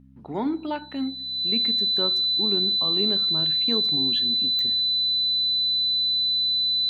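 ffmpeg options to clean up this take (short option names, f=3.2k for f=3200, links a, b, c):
-af "adeclick=t=4,bandreject=f=65.7:t=h:w=4,bandreject=f=131.4:t=h:w=4,bandreject=f=197.1:t=h:w=4,bandreject=f=262.8:t=h:w=4,bandreject=f=4k:w=30"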